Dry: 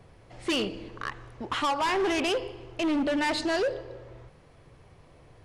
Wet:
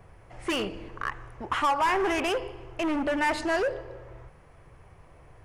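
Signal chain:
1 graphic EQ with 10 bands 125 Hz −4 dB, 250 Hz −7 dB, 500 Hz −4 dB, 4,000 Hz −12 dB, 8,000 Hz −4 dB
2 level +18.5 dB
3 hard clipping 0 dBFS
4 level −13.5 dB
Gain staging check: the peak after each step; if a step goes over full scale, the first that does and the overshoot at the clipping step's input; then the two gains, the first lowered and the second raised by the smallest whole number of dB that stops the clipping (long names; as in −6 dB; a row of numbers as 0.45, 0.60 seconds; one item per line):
−22.0, −3.5, −3.5, −17.0 dBFS
no step passes full scale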